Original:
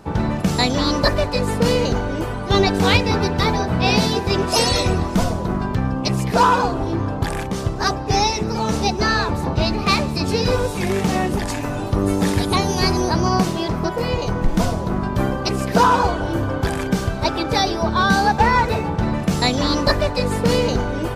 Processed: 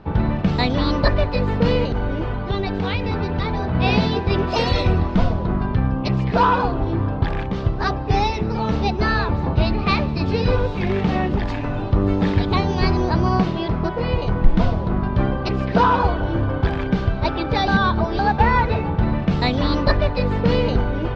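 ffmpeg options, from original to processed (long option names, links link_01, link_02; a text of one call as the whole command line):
ffmpeg -i in.wav -filter_complex "[0:a]asettb=1/sr,asplit=3[link_01][link_02][link_03];[link_01]atrim=end=1.844[link_04];[link_02]atrim=start=1.84:end=3.75,asetpts=PTS-STARTPTS,afade=type=in:duration=0.004:curve=qsin,afade=type=out:start_time=1.906:duration=0.004:curve=qsin,acompressor=threshold=-18dB:ratio=6:attack=3.2:release=140:knee=1:detection=peak[link_05];[link_03]atrim=start=3.746[link_06];[link_04][link_05]acrossfade=duration=0.004:curve1=hsin:curve2=qsin[link_07];[link_07][link_06]acrossfade=duration=0.004:curve1=qsin:curve2=hsin,asplit=3[link_08][link_09][link_10];[link_08]atrim=end=17.682[link_11];[link_09]atrim=start=17.678:end=18.192,asetpts=PTS-STARTPTS,areverse[link_12];[link_10]atrim=start=18.188[link_13];[link_11][link_12]acrossfade=duration=0.004:curve1=hsin:curve2=hsin[link_14];[link_14][link_13]acrossfade=duration=0.004:curve1=hsin:curve2=hsin,lowpass=frequency=3900:width=0.5412,lowpass=frequency=3900:width=1.3066,lowshelf=frequency=110:gain=8,volume=-2dB" out.wav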